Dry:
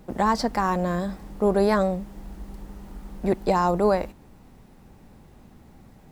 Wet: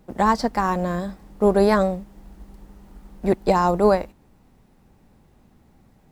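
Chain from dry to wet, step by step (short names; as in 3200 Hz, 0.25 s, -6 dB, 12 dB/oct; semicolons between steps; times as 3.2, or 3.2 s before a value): upward expander 1.5:1, over -37 dBFS; gain +4.5 dB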